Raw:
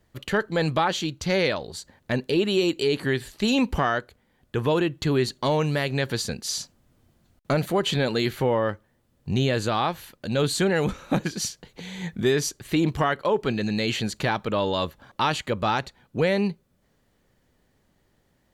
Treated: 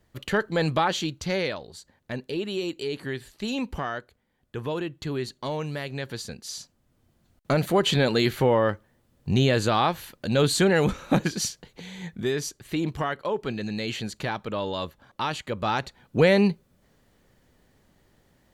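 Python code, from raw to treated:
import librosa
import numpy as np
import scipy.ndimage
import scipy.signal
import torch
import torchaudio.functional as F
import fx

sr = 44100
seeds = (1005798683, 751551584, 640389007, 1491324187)

y = fx.gain(x, sr, db=fx.line((1.03, -0.5), (1.7, -7.5), (6.61, -7.5), (7.77, 2.0), (11.28, 2.0), (12.1, -5.0), (15.45, -5.0), (16.2, 4.0)))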